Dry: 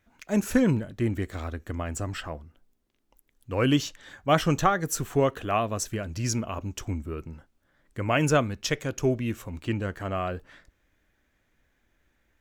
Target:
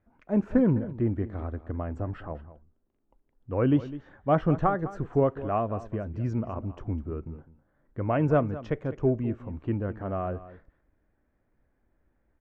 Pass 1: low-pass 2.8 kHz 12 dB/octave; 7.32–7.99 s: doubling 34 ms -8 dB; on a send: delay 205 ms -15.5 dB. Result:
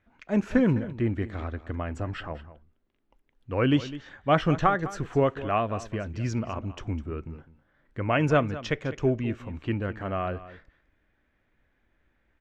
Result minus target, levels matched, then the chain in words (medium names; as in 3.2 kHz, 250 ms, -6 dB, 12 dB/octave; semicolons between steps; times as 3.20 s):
2 kHz band +8.5 dB
low-pass 1 kHz 12 dB/octave; 7.32–7.99 s: doubling 34 ms -8 dB; on a send: delay 205 ms -15.5 dB